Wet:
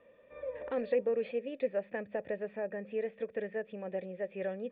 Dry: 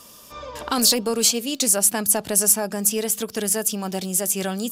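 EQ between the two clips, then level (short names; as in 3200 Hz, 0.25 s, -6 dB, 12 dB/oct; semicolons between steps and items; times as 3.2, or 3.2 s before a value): vocal tract filter e; +2.0 dB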